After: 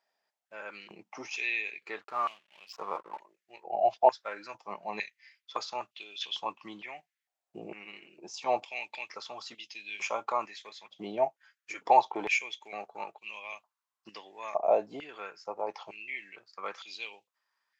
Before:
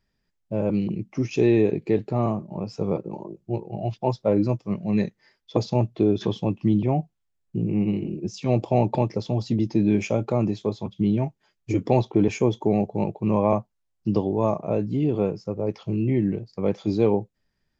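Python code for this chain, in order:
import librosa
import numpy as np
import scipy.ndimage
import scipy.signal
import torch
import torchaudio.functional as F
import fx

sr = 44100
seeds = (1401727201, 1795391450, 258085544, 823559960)

y = fx.backlash(x, sr, play_db=-42.5, at=(2.01, 3.2))
y = fx.filter_held_highpass(y, sr, hz=2.2, low_hz=710.0, high_hz=2800.0)
y = y * 10.0 ** (-2.5 / 20.0)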